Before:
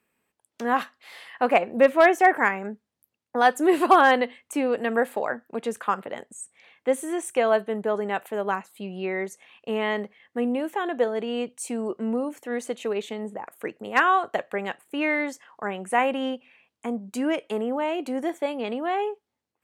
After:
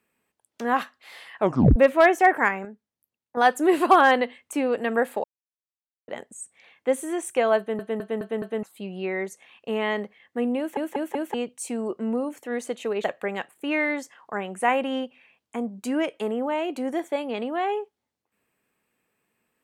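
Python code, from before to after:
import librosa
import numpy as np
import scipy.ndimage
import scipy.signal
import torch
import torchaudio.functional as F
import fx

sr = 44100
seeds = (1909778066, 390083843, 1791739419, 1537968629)

y = fx.edit(x, sr, fx.tape_stop(start_s=1.37, length_s=0.39),
    fx.clip_gain(start_s=2.65, length_s=0.72, db=-7.5),
    fx.silence(start_s=5.24, length_s=0.84),
    fx.stutter_over(start_s=7.58, slice_s=0.21, count=5),
    fx.stutter_over(start_s=10.58, slice_s=0.19, count=4),
    fx.cut(start_s=13.04, length_s=1.3), tone=tone)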